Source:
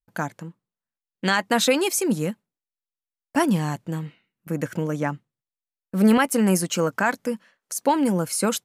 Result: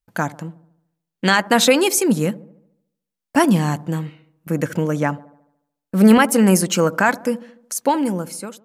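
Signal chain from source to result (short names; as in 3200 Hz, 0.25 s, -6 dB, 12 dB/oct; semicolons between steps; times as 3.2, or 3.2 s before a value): ending faded out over 1.07 s; dark delay 73 ms, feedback 53%, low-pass 870 Hz, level -17.5 dB; gain +5.5 dB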